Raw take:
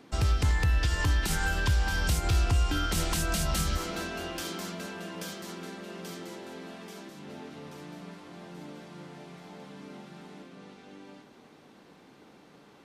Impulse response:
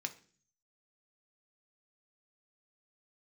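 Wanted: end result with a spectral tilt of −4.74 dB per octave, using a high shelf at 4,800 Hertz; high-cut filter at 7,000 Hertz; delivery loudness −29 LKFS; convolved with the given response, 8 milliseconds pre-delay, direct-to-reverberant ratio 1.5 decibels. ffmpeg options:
-filter_complex "[0:a]lowpass=7000,highshelf=frequency=4800:gain=-4.5,asplit=2[link_01][link_02];[1:a]atrim=start_sample=2205,adelay=8[link_03];[link_02][link_03]afir=irnorm=-1:irlink=0,volume=-1.5dB[link_04];[link_01][link_04]amix=inputs=2:normalize=0,volume=1.5dB"

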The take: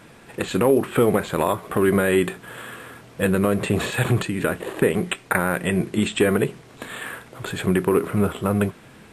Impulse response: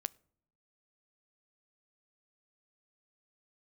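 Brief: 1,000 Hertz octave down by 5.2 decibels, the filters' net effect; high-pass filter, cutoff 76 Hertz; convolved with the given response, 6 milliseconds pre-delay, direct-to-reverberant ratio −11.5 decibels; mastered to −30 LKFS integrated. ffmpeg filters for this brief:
-filter_complex "[0:a]highpass=76,equalizer=frequency=1000:width_type=o:gain=-7,asplit=2[link_01][link_02];[1:a]atrim=start_sample=2205,adelay=6[link_03];[link_02][link_03]afir=irnorm=-1:irlink=0,volume=13dB[link_04];[link_01][link_04]amix=inputs=2:normalize=0,volume=-19dB"

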